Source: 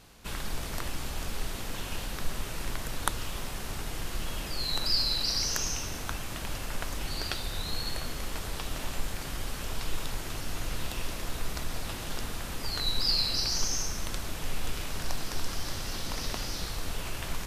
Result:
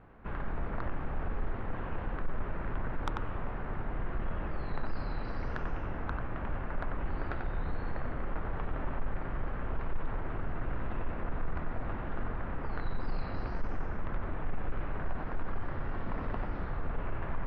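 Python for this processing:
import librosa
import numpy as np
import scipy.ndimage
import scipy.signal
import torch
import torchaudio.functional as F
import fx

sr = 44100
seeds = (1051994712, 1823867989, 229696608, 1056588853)

y = scipy.signal.sosfilt(scipy.signal.butter(4, 1700.0, 'lowpass', fs=sr, output='sos'), x)
y = y + 10.0 ** (-6.5 / 20.0) * np.pad(y, (int(92 * sr / 1000.0), 0))[:len(y)]
y = 10.0 ** (-23.0 / 20.0) * np.tanh(y / 10.0 ** (-23.0 / 20.0))
y = F.gain(torch.from_numpy(y), 1.0).numpy()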